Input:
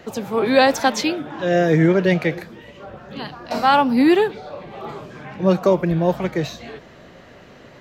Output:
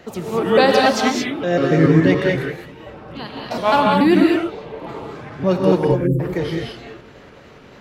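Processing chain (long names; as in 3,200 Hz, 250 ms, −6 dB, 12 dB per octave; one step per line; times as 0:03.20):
pitch shifter gated in a rhythm −4 semitones, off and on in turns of 143 ms
time-frequency box erased 0:05.84–0:06.19, 530–6,900 Hz
reverb whose tail is shaped and stops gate 240 ms rising, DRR −0.5 dB
level −1 dB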